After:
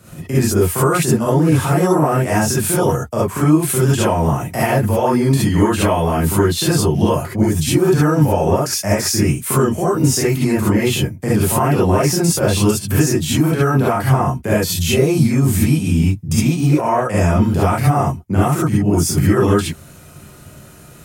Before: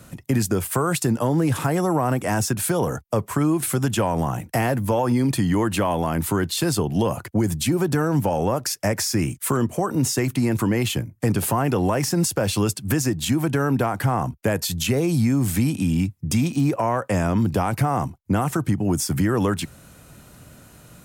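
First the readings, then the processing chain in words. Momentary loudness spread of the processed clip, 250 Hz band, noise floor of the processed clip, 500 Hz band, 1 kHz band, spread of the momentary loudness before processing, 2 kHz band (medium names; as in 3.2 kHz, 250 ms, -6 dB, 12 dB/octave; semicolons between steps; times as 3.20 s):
3 LU, +5.5 dB, -41 dBFS, +7.5 dB, +6.0 dB, 3 LU, +5.5 dB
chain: gated-style reverb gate 90 ms rising, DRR -8 dB; trim -2.5 dB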